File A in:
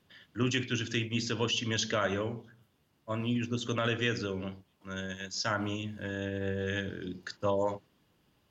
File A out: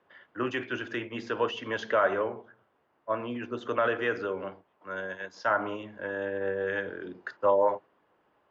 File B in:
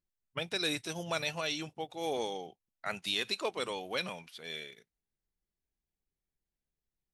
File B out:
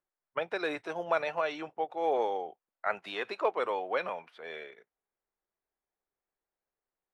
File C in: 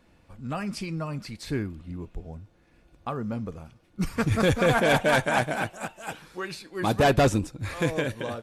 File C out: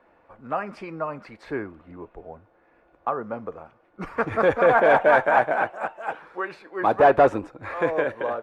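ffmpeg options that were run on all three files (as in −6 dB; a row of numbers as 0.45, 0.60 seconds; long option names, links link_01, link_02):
-filter_complex "[0:a]asplit=2[link_01][link_02];[link_02]highpass=frequency=720:poles=1,volume=6dB,asoftclip=type=tanh:threshold=-13dB[link_03];[link_01][link_03]amix=inputs=2:normalize=0,lowpass=frequency=1200:poles=1,volume=-6dB,acrossover=split=360 2000:gain=0.158 1 0.158[link_04][link_05][link_06];[link_04][link_05][link_06]amix=inputs=3:normalize=0,volume=9dB"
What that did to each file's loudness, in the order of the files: +2.5, +2.5, +4.0 LU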